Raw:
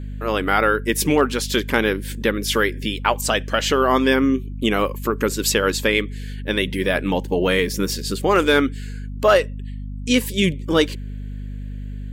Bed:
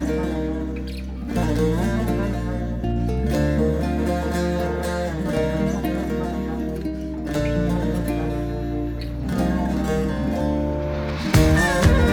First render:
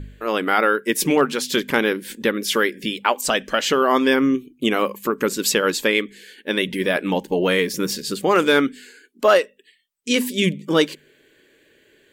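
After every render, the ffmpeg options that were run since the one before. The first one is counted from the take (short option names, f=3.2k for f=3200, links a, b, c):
-af "bandreject=f=50:t=h:w=4,bandreject=f=100:t=h:w=4,bandreject=f=150:t=h:w=4,bandreject=f=200:t=h:w=4,bandreject=f=250:t=h:w=4"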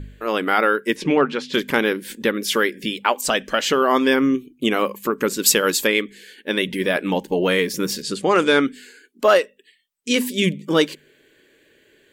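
-filter_complex "[0:a]asplit=3[a][b][c];[a]afade=t=out:st=0.94:d=0.02[d];[b]lowpass=3.2k,afade=t=in:st=0.94:d=0.02,afade=t=out:st=1.53:d=0.02[e];[c]afade=t=in:st=1.53:d=0.02[f];[d][e][f]amix=inputs=3:normalize=0,asettb=1/sr,asplit=3[g][h][i];[g]atrim=end=5.464[j];[h]atrim=start=5.46:end=5.87,asetpts=PTS-STARTPTS,afade=t=in:d=0.004:c=qsin,afade=t=out:st=0.406:d=0.004:c=qsin,highshelf=f=6.8k:g=10.5[k];[i]atrim=start=5.866[l];[j][k]acrossfade=d=0.004:c1=hsin:c2=qsin[m];[m][l]acrossfade=d=0.004:c1=qsin:c2=hsin,asettb=1/sr,asplit=3[n][o][p];[n]atrim=end=8.024[q];[o]atrim=start=8.02:end=8.67,asetpts=PTS-STARTPTS,afade=t=in:d=0.004:c=qsin,afade=t=out:st=0.646:d=0.004:c=qsin,lowpass=f=10k:w=0.5412,lowpass=f=10k:w=1.3066[r];[p]atrim=start=8.666[s];[q][r]acrossfade=d=0.004:c1=hsin:c2=qsin[t];[t][s]acrossfade=d=0.004:c1=qsin:c2=hsin"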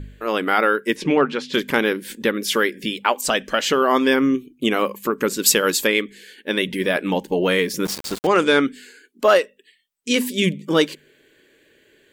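-filter_complex "[0:a]asettb=1/sr,asplit=3[a][b][c];[a]atrim=end=7.854[d];[b]atrim=start=7.85:end=8.27,asetpts=PTS-STARTPTS,afade=t=in:d=0.004:c=qsin,afade=t=out:st=0.416:d=0.004:c=qsin,aeval=exprs='val(0)*gte(abs(val(0)),0.0501)':c=same[e];[c]atrim=start=8.266[f];[d][e]acrossfade=d=0.004:c1=hsin:c2=qsin[g];[g][f]acrossfade=d=0.004:c1=qsin:c2=hsin"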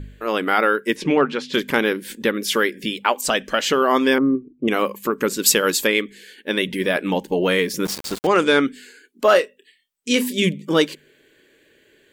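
-filter_complex "[0:a]asettb=1/sr,asplit=3[a][b][c];[a]atrim=end=4.184[d];[b]atrim=start=4.18:end=4.68,asetpts=PTS-STARTPTS,afade=t=in:d=0.004:c=qsin,afade=t=out:st=0.496:d=0.004:c=qsin,lowpass=f=1.1k:w=0.5412,lowpass=f=1.1k:w=1.3066[e];[c]atrim=start=4.676[f];[d][e]acrossfade=d=0.004:c1=hsin:c2=qsin[g];[g][f]acrossfade=d=0.004:c1=qsin:c2=hsin,asettb=1/sr,asplit=3[h][i][j];[h]atrim=end=9.294[k];[i]atrim=start=9.29:end=10.48,asetpts=PTS-STARTPTS,afade=t=in:d=0.004:c=qsin,afade=t=out:st=1.186:d=0.004:c=qsin,asplit=2[l][m];[m]adelay=28,volume=-12dB[n];[l][n]amix=inputs=2:normalize=0,atrim=end_sample=52479[o];[j]atrim=start=10.476[p];[k][o]acrossfade=d=0.004:c1=hsin:c2=qsin[q];[q][p]acrossfade=d=0.004:c1=qsin:c2=hsin"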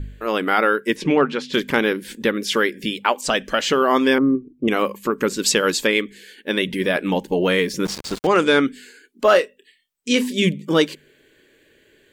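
-filter_complex "[0:a]acrossover=split=8400[a][b];[b]acompressor=threshold=-44dB:ratio=4:attack=1:release=60[c];[a][c]amix=inputs=2:normalize=0,lowshelf=f=100:g=6.5"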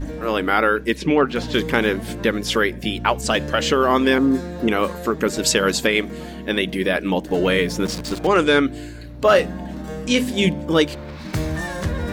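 -filter_complex "[1:a]volume=-8.5dB[a];[0:a][a]amix=inputs=2:normalize=0"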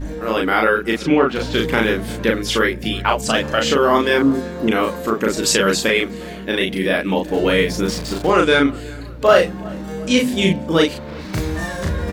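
-filter_complex "[0:a]asplit=2[a][b];[b]adelay=36,volume=-2dB[c];[a][c]amix=inputs=2:normalize=0,asplit=2[d][e];[e]adelay=365,lowpass=f=2.5k:p=1,volume=-22.5dB,asplit=2[f][g];[g]adelay=365,lowpass=f=2.5k:p=1,volume=0.52,asplit=2[h][i];[i]adelay=365,lowpass=f=2.5k:p=1,volume=0.52,asplit=2[j][k];[k]adelay=365,lowpass=f=2.5k:p=1,volume=0.52[l];[d][f][h][j][l]amix=inputs=5:normalize=0"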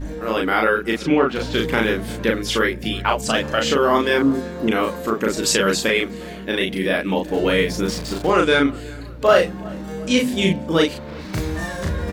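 -af "volume=-2dB"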